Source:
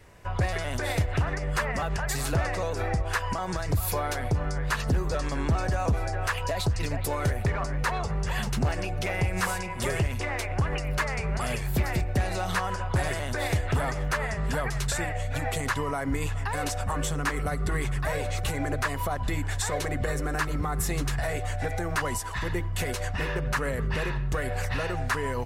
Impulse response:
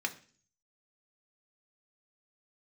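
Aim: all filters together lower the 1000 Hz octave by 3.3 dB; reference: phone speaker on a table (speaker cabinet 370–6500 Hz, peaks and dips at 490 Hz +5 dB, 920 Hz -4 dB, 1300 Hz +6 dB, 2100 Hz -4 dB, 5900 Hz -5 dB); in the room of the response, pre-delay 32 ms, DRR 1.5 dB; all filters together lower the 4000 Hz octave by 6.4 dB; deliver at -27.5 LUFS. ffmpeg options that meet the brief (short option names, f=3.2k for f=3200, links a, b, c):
-filter_complex "[0:a]equalizer=f=1k:t=o:g=-5.5,equalizer=f=4k:t=o:g=-7,asplit=2[a][b];[1:a]atrim=start_sample=2205,adelay=32[c];[b][c]afir=irnorm=-1:irlink=0,volume=-5.5dB[d];[a][d]amix=inputs=2:normalize=0,highpass=f=370:w=0.5412,highpass=f=370:w=1.3066,equalizer=f=490:t=q:w=4:g=5,equalizer=f=920:t=q:w=4:g=-4,equalizer=f=1.3k:t=q:w=4:g=6,equalizer=f=2.1k:t=q:w=4:g=-4,equalizer=f=5.9k:t=q:w=4:g=-5,lowpass=f=6.5k:w=0.5412,lowpass=f=6.5k:w=1.3066,volume=5dB"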